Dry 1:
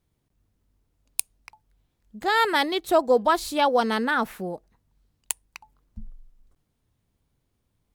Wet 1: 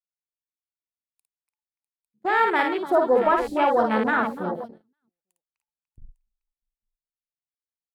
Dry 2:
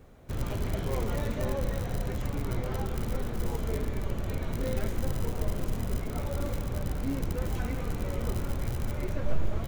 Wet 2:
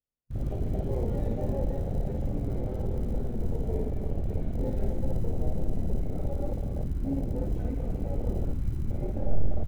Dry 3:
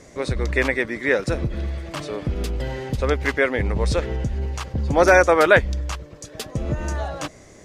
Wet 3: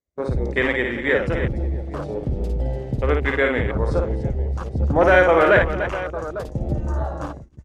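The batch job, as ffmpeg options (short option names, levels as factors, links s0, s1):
-af "asoftclip=type=tanh:threshold=0.501,aecho=1:1:55|293|650|852:0.631|0.299|0.141|0.224,afwtdn=0.0398,agate=range=0.0316:threshold=0.02:ratio=16:detection=peak,aeval=exprs='0.75*(cos(1*acos(clip(val(0)/0.75,-1,1)))-cos(1*PI/2))+0.015*(cos(2*acos(clip(val(0)/0.75,-1,1)))-cos(2*PI/2))':c=same"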